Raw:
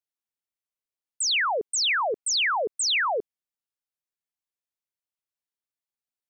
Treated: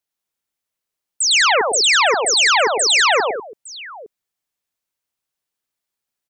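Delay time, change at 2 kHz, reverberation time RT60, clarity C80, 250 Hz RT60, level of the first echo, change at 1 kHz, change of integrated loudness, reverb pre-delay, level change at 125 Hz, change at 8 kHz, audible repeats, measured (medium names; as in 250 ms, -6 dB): 106 ms, +10.0 dB, no reverb, no reverb, no reverb, -3.5 dB, +10.0 dB, +10.0 dB, no reverb, no reading, +10.0 dB, 4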